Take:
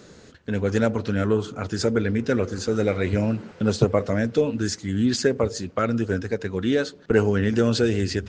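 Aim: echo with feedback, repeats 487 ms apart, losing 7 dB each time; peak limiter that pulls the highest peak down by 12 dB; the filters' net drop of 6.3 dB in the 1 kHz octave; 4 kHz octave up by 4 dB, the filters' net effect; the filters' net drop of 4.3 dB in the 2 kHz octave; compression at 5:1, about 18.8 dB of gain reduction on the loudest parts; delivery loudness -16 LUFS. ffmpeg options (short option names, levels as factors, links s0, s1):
-af "equalizer=f=1000:t=o:g=-8.5,equalizer=f=2000:t=o:g=-3.5,equalizer=f=4000:t=o:g=6,acompressor=threshold=0.0158:ratio=5,alimiter=level_in=2.82:limit=0.0631:level=0:latency=1,volume=0.355,aecho=1:1:487|974|1461|1948|2435:0.447|0.201|0.0905|0.0407|0.0183,volume=20"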